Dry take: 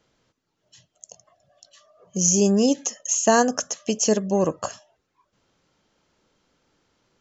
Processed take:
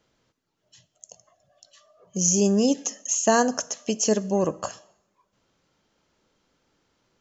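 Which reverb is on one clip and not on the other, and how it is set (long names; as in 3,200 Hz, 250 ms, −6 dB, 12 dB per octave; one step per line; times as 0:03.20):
coupled-rooms reverb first 0.74 s, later 2.4 s, from −27 dB, DRR 17.5 dB
level −2 dB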